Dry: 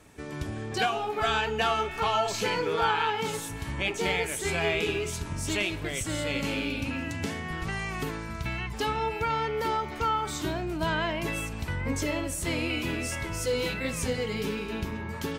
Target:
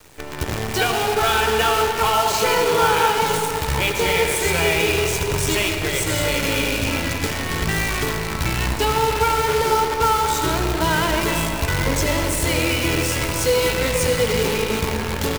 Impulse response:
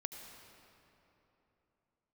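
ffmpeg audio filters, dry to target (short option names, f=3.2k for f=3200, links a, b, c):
-filter_complex "[0:a]bandreject=f=50:t=h:w=6,bandreject=f=100:t=h:w=6,bandreject=f=150:t=h:w=6,bandreject=f=200:t=h:w=6,bandreject=f=250:t=h:w=6,bandreject=f=300:t=h:w=6,bandreject=f=350:t=h:w=6,bandreject=f=400:t=h:w=6,aecho=1:1:2.1:0.37,asplit=2[a][b];[b]alimiter=limit=-21.5dB:level=0:latency=1:release=163,volume=1.5dB[c];[a][c]amix=inputs=2:normalize=0,acrusher=bits=5:dc=4:mix=0:aa=0.000001[d];[1:a]atrim=start_sample=2205[e];[d][e]afir=irnorm=-1:irlink=0,volume=5dB"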